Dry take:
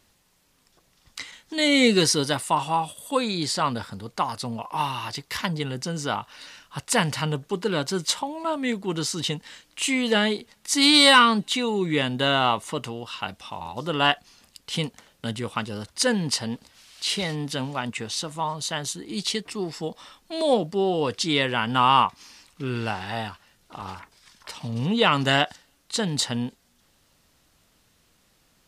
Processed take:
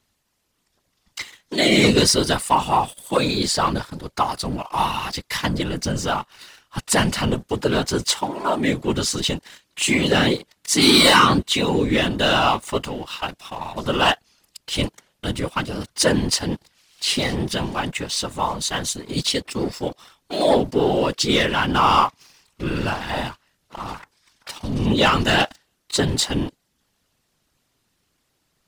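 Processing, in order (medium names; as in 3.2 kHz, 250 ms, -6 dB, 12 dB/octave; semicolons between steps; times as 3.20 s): waveshaping leveller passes 2; whisper effect; trim -2.5 dB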